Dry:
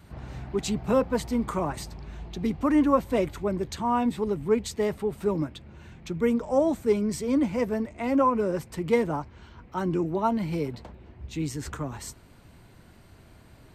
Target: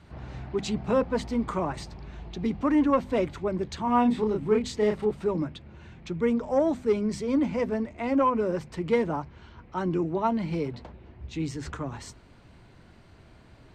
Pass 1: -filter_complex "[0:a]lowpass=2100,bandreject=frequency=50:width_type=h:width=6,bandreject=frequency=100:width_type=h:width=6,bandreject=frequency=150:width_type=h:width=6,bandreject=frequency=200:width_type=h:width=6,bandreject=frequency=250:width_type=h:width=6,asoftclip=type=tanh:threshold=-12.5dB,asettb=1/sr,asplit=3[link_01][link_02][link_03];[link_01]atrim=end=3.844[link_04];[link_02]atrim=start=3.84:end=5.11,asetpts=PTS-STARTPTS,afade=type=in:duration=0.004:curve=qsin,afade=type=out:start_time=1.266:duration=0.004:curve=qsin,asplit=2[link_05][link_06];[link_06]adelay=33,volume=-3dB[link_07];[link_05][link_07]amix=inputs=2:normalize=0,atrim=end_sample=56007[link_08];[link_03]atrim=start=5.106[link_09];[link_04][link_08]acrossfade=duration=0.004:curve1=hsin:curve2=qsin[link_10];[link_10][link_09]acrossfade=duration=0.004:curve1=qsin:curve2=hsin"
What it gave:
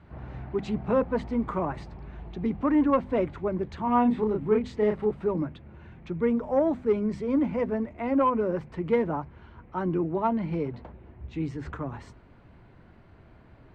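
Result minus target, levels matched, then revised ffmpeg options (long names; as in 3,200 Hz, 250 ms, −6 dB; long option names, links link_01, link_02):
8,000 Hz band −16.5 dB
-filter_complex "[0:a]lowpass=5700,bandreject=frequency=50:width_type=h:width=6,bandreject=frequency=100:width_type=h:width=6,bandreject=frequency=150:width_type=h:width=6,bandreject=frequency=200:width_type=h:width=6,bandreject=frequency=250:width_type=h:width=6,asoftclip=type=tanh:threshold=-12.5dB,asettb=1/sr,asplit=3[link_01][link_02][link_03];[link_01]atrim=end=3.844[link_04];[link_02]atrim=start=3.84:end=5.11,asetpts=PTS-STARTPTS,afade=type=in:duration=0.004:curve=qsin,afade=type=out:start_time=1.266:duration=0.004:curve=qsin,asplit=2[link_05][link_06];[link_06]adelay=33,volume=-3dB[link_07];[link_05][link_07]amix=inputs=2:normalize=0,atrim=end_sample=56007[link_08];[link_03]atrim=start=5.106[link_09];[link_04][link_08]acrossfade=duration=0.004:curve1=hsin:curve2=qsin[link_10];[link_10][link_09]acrossfade=duration=0.004:curve1=qsin:curve2=hsin"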